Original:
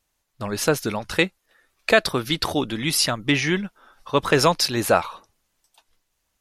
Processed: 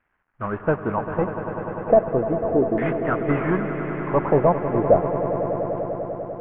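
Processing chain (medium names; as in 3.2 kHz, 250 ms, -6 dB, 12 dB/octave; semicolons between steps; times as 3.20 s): CVSD coder 16 kbps; LFO low-pass saw down 0.36 Hz 430–1700 Hz; echo with a slow build-up 99 ms, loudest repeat 5, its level -12.5 dB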